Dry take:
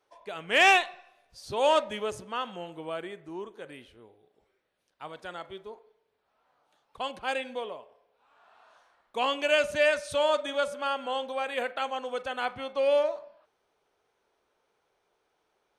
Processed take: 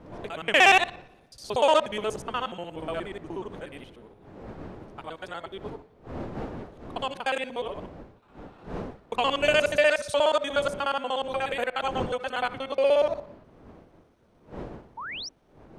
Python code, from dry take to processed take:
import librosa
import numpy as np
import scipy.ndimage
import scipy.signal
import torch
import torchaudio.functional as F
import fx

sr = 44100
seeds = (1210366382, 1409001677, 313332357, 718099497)

y = fx.local_reverse(x, sr, ms=60.0)
y = fx.dmg_wind(y, sr, seeds[0], corner_hz=480.0, level_db=-46.0)
y = fx.spec_paint(y, sr, seeds[1], shape='rise', start_s=14.97, length_s=0.32, low_hz=840.0, high_hz=6000.0, level_db=-39.0)
y = F.gain(torch.from_numpy(y), 3.0).numpy()